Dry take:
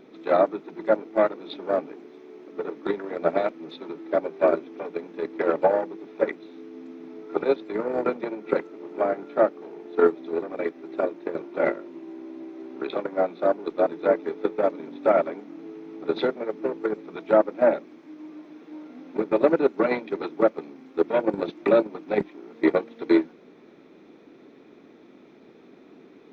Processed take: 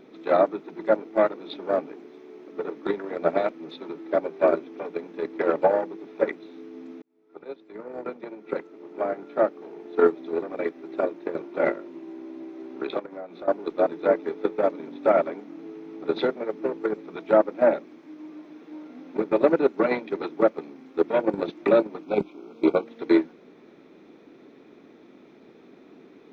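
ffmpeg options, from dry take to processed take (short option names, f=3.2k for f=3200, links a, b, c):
-filter_complex "[0:a]asettb=1/sr,asplit=3[a][b][c];[a]atrim=end=12.994[d];[b]atrim=start=12.99:end=13.48,asetpts=PTS-STARTPTS,afade=t=in:d=0.004:c=qsin,afade=t=out:st=0.486:d=0.004:c=qsin,acompressor=threshold=-36dB:ratio=4:attack=3.2:release=140:knee=1:detection=peak[e];[c]atrim=start=13.476[f];[d][e]acrossfade=d=0.004:c1=hsin:c2=qsin[g];[g][f]acrossfade=d=0.004:c1=qsin:c2=hsin,asettb=1/sr,asplit=3[h][i][j];[h]atrim=end=22.034[k];[i]atrim=start=22.03:end=22.86,asetpts=PTS-STARTPTS,afade=t=in:d=0.004:c=qsin,afade=t=out:st=0.826:d=0.004:c=qsin,asuperstop=centerf=1800:order=8:qfactor=2.8[l];[j]atrim=start=22.856[m];[k][l]acrossfade=d=0.004:c1=hsin:c2=qsin[n];[n][m]acrossfade=d=0.004:c1=qsin:c2=hsin,asplit=2[o][p];[o]atrim=end=7.02,asetpts=PTS-STARTPTS,afade=t=out:st=7.016:d=0.004:c=hsin[q];[p]atrim=start=7.02,asetpts=PTS-STARTPTS,afade=t=in:d=2.95[r];[q][r]concat=n=2:v=0:a=1"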